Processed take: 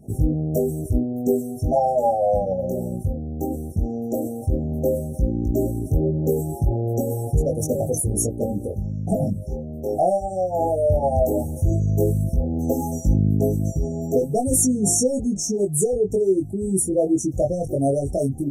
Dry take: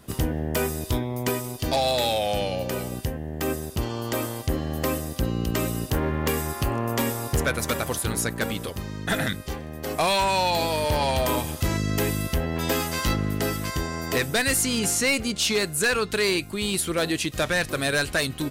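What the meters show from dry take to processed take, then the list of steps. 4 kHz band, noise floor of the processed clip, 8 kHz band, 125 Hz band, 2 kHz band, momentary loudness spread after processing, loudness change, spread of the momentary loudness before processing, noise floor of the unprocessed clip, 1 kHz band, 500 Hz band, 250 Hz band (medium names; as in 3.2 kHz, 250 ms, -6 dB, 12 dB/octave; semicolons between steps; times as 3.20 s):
-16.5 dB, -33 dBFS, +2.5 dB, +5.5 dB, under -40 dB, 7 LU, +3.0 dB, 7 LU, -37 dBFS, 0.0 dB, +5.5 dB, +5.0 dB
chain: spectral contrast enhancement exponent 1.7; chorus 0.14 Hz, delay 19.5 ms, depth 2.2 ms; brick-wall FIR band-stop 840–5400 Hz; trim +8 dB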